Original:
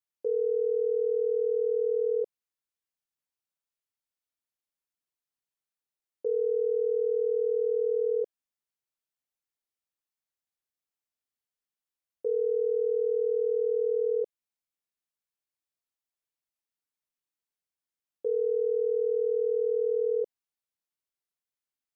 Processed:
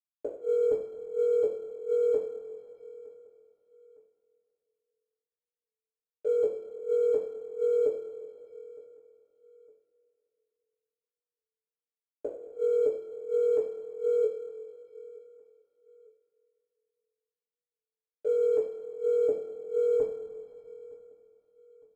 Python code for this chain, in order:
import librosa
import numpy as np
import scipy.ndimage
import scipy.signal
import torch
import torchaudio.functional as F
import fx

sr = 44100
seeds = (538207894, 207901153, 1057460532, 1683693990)

y = fx.env_lowpass(x, sr, base_hz=460.0, full_db=-25.0)
y = fx.chopper(y, sr, hz=1.4, depth_pct=60, duty_pct=45)
y = np.sign(y) * np.maximum(np.abs(y) - 10.0 ** (-58.5 / 20.0), 0.0)
y = fx.gate_flip(y, sr, shuts_db=-28.0, range_db=-28)
y = fx.echo_feedback(y, sr, ms=911, feedback_pct=38, wet_db=-23.5)
y = fx.rev_double_slope(y, sr, seeds[0], early_s=0.44, late_s=3.0, knee_db=-16, drr_db=-7.5)
y = np.interp(np.arange(len(y)), np.arange(len(y))[::6], y[::6])
y = y * librosa.db_to_amplitude(2.0)